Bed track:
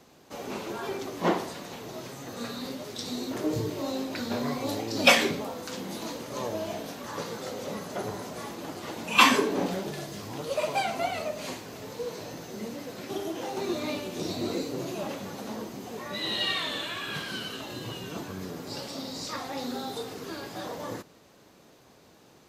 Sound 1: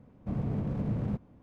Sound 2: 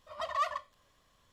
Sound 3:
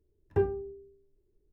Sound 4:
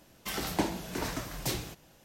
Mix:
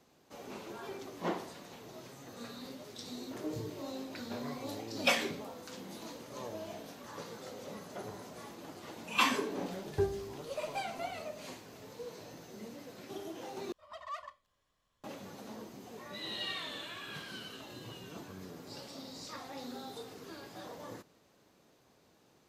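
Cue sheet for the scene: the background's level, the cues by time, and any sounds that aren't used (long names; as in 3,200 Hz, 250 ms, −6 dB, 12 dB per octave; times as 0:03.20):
bed track −10 dB
0:09.62: mix in 3 −4.5 dB
0:13.72: overwrite with 2 −11 dB
not used: 1, 4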